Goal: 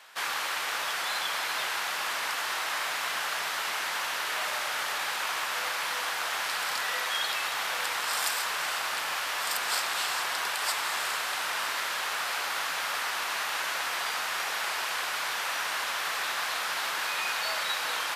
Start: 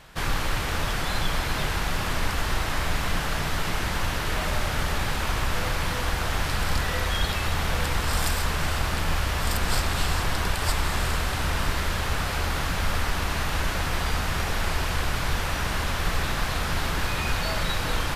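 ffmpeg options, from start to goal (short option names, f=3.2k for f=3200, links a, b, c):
-af "highpass=830"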